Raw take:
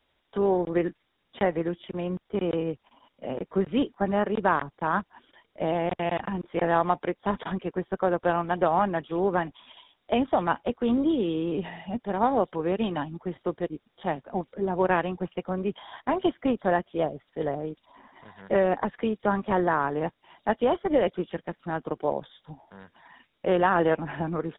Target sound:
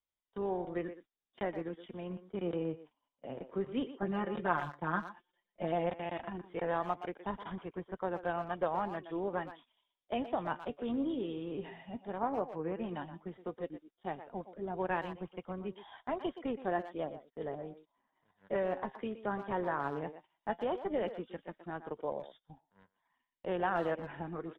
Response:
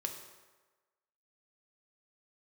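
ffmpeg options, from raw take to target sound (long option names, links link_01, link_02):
-filter_complex "[0:a]asettb=1/sr,asplit=3[link_01][link_02][link_03];[link_01]atrim=end=12.184[link_04];[link_02]atrim=start=12.18:end=12.89,asetpts=PTS-STARTPTS,afade=type=in:duration=0.004:curve=qsin,afade=type=out:start_time=0.706:duration=0.004:curve=qsin,lowpass=frequency=2400:width=0.5412,lowpass=frequency=2400:width=1.3066[link_05];[link_03]atrim=start=12.886[link_06];[link_04][link_05]acrossfade=duration=0.004:curve1=hsin:curve2=qsin[link_07];[link_07][link_06]acrossfade=duration=0.004:curve1=qsin:curve2=hsin,asplit=2[link_08][link_09];[link_09]adelay=120,highpass=300,lowpass=3400,asoftclip=type=hard:threshold=-16dB,volume=-11dB[link_10];[link_08][link_10]amix=inputs=2:normalize=0,flanger=delay=0.9:depth=6.7:regen=70:speed=0.13:shape=sinusoidal,agate=range=-16dB:threshold=-49dB:ratio=16:detection=peak,asettb=1/sr,asplit=3[link_11][link_12][link_13];[link_11]atrim=end=4.024[link_14];[link_12]atrim=start=4.02:end=5.9,asetpts=PTS-STARTPTS,afade=type=in:duration=0.004:curve=qsin,afade=type=out:start_time=1.876:duration=0.004:curve=qsin,aecho=1:1:5.7:0.89,atrim=end_sample=82908[link_15];[link_13]atrim=start=5.896[link_16];[link_14][link_15]acrossfade=duration=0.004:curve1=hsin:curve2=qsin[link_17];[link_17][link_16]acrossfade=duration=0.004:curve1=qsin:curve2=hsin,volume=-6.5dB"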